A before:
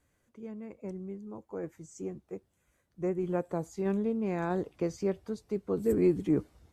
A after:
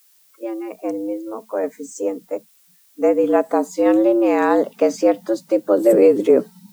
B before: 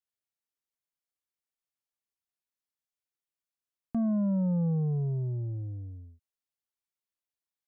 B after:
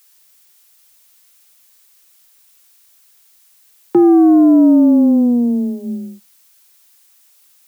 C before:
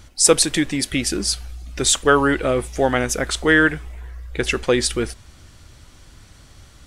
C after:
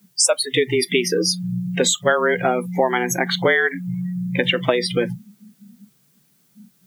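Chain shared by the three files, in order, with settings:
notches 50/100 Hz; frequency shift +120 Hz; compressor 6:1, threshold -23 dBFS; spectral noise reduction 29 dB; added noise blue -71 dBFS; normalise peaks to -3 dBFS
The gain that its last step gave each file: +15.5, +19.0, +9.0 dB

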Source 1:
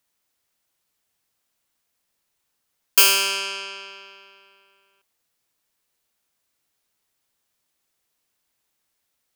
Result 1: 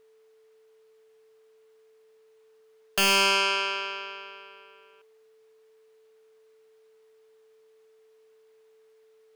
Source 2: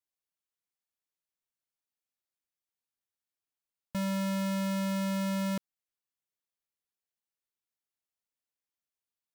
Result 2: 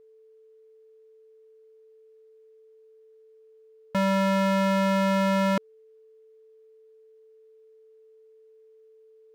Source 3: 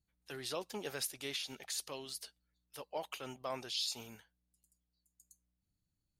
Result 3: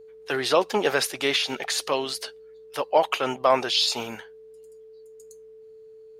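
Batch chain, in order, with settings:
overdrive pedal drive 22 dB, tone 1200 Hz, clips at -1.5 dBFS; whine 440 Hz -54 dBFS; match loudness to -24 LUFS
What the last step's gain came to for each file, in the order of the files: -3.0, +1.5, +9.5 dB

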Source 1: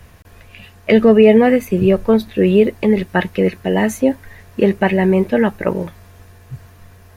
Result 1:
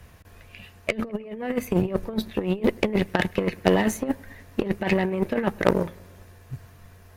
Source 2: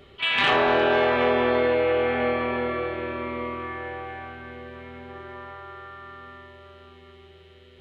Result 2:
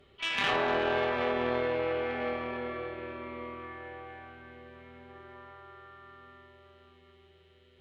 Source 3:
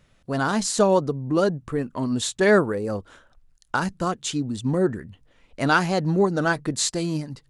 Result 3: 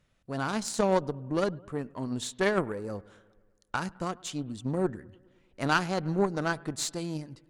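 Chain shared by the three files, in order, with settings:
negative-ratio compressor -16 dBFS, ratio -0.5; analogue delay 0.104 s, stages 2048, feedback 64%, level -22 dB; added harmonics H 2 -8 dB, 4 -11 dB, 6 -28 dB, 7 -24 dB, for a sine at -2 dBFS; gain -5 dB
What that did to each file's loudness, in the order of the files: -11.0, -8.5, -7.5 LU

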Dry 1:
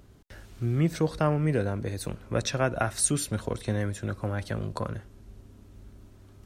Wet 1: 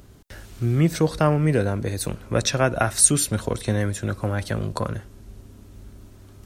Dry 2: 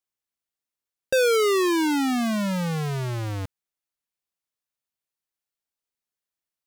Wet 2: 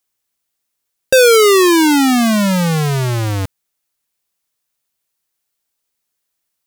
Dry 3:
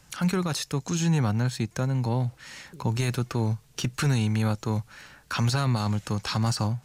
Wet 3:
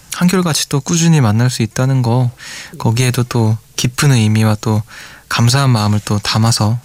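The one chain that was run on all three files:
high shelf 5300 Hz +5.5 dB; normalise peaks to -2 dBFS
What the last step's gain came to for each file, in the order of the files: +5.5, +11.0, +13.0 dB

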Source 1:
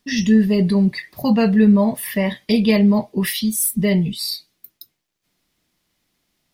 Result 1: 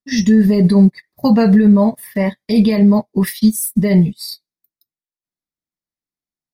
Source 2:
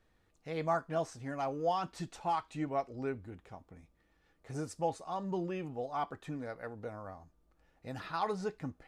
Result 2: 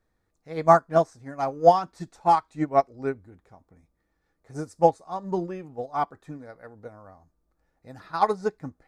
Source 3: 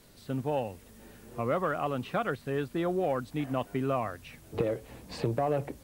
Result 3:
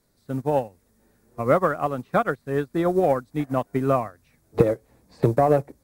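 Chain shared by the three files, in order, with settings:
bell 2900 Hz -11 dB 0.51 oct; limiter -14 dBFS; upward expander 2.5:1, over -41 dBFS; normalise peaks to -3 dBFS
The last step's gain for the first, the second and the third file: +11.5, +18.0, +13.5 dB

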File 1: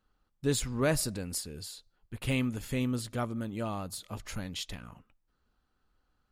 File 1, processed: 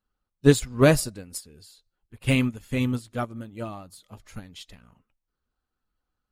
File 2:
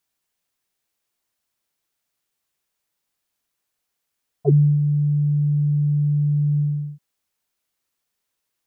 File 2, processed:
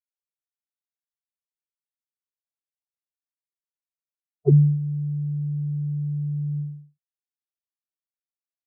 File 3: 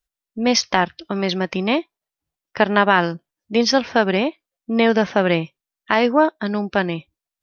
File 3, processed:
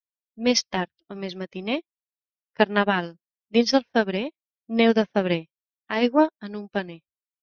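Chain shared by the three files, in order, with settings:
bin magnitudes rounded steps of 15 dB; dynamic EQ 1100 Hz, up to -6 dB, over -32 dBFS, Q 0.94; upward expander 2.5:1, over -39 dBFS; match loudness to -24 LUFS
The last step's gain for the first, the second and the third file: +14.5, +2.0, +1.5 dB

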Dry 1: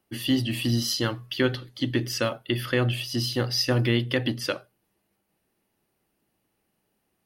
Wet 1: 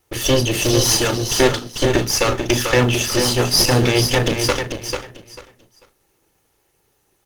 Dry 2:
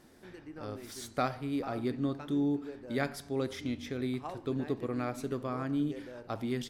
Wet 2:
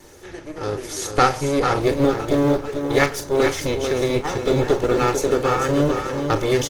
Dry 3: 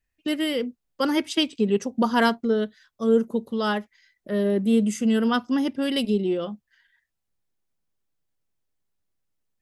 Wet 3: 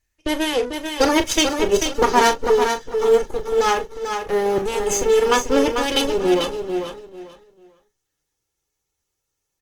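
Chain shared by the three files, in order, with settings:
minimum comb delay 2.3 ms; bell 6300 Hz +10.5 dB 0.3 oct; in parallel at -11 dB: short-mantissa float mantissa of 2-bit; on the sum: doubler 36 ms -10.5 dB; on a send: feedback echo 0.443 s, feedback 22%, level -6.5 dB; on the sum: Opus 20 kbps 48000 Hz; normalise peaks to -2 dBFS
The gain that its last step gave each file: +10.0, +13.5, +5.5 dB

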